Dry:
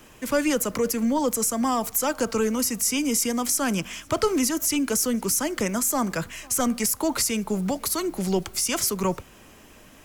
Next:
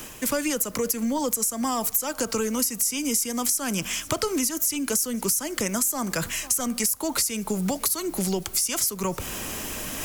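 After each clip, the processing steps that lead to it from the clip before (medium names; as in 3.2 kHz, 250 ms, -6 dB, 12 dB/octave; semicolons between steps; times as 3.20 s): reverse; upward compressor, threshold -28 dBFS; reverse; treble shelf 4.7 kHz +10.5 dB; compression 6:1, threshold -26 dBFS, peak gain reduction 14.5 dB; trim +3.5 dB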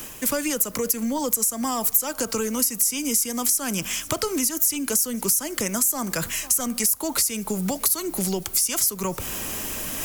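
treble shelf 11 kHz +7.5 dB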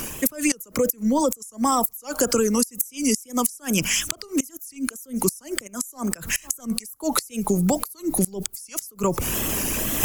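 resonances exaggerated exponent 1.5; inverted gate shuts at -12 dBFS, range -24 dB; wow and flutter 100 cents; trim +5.5 dB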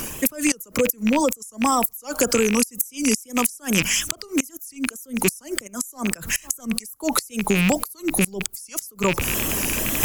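rattle on loud lows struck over -28 dBFS, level -13 dBFS; trim +1 dB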